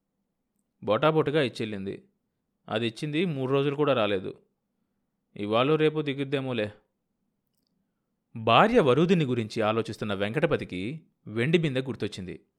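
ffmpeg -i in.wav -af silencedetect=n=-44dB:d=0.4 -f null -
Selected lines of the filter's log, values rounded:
silence_start: 0.00
silence_end: 0.83 | silence_duration: 0.83
silence_start: 1.99
silence_end: 2.68 | silence_duration: 0.69
silence_start: 4.36
silence_end: 5.36 | silence_duration: 1.00
silence_start: 6.72
silence_end: 8.35 | silence_duration: 1.63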